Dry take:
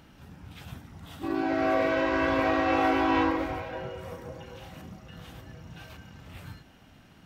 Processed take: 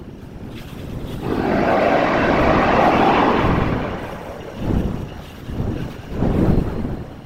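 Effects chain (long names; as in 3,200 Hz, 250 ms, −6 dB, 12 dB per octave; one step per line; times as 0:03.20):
wind on the microphone 230 Hz −33 dBFS
echo with a time of its own for lows and highs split 580 Hz, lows 87 ms, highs 215 ms, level −4 dB
random phases in short frames
level +7.5 dB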